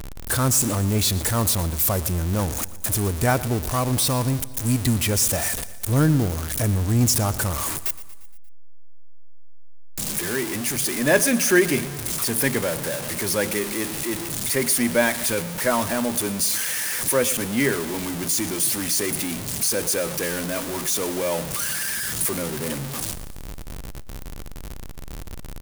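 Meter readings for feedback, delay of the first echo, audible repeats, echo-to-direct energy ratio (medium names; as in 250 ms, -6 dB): 58%, 117 ms, 4, -16.0 dB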